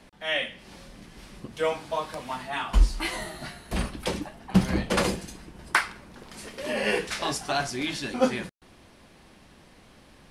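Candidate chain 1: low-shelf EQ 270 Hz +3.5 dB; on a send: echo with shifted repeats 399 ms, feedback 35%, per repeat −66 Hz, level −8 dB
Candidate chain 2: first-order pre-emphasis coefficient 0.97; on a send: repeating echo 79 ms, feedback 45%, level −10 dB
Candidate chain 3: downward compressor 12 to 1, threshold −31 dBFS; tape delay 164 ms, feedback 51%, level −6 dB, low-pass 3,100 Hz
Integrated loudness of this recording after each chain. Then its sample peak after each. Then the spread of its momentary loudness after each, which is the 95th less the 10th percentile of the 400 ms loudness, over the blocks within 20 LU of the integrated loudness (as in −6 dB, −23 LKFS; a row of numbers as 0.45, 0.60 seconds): −27.5, −39.0, −36.5 LKFS; −5.0, −15.5, −13.0 dBFS; 15, 17, 19 LU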